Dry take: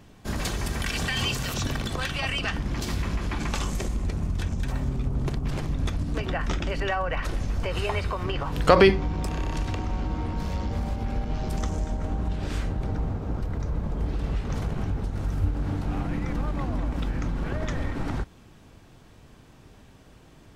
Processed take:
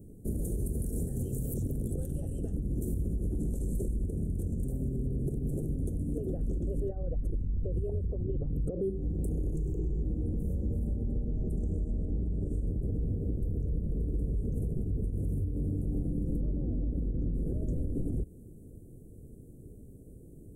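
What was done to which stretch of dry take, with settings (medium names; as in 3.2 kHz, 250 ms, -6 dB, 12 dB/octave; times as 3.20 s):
0.62–1.23 s: time-frequency box 2–4.6 kHz -13 dB
4.06–6.34 s: bass shelf 150 Hz -8 dB
6.88–8.82 s: resonances exaggerated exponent 1.5
9.55–10.03 s: rippled EQ curve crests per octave 0.73, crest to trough 13 dB
10.87–12.67 s: distance through air 53 m
13.97–14.50 s: gain +5 dB
15.19–15.68 s: high-pass 58 Hz
16.40–17.34 s: resonant high shelf 2.6 kHz -11.5 dB, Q 1.5
whole clip: compression 10:1, threshold -28 dBFS; elliptic band-stop 450–9300 Hz, stop band 40 dB; peak limiter -27 dBFS; trim +3 dB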